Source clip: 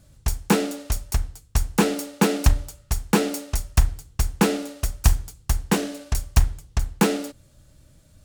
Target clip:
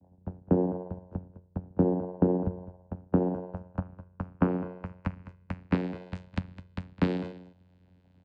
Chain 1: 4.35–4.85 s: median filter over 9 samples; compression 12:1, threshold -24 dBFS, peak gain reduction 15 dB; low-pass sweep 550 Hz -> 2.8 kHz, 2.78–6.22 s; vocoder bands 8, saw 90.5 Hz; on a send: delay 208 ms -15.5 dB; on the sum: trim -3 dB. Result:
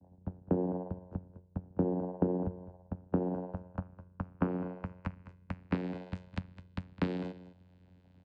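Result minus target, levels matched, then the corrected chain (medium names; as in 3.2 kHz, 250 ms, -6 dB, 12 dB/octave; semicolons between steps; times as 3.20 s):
compression: peak gain reduction +7 dB
4.35–4.85 s: median filter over 9 samples; compression 12:1, threshold -16.5 dBFS, peak gain reduction 8 dB; low-pass sweep 550 Hz -> 2.8 kHz, 2.78–6.22 s; vocoder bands 8, saw 90.5 Hz; on a send: delay 208 ms -15.5 dB; on the sum: trim -3 dB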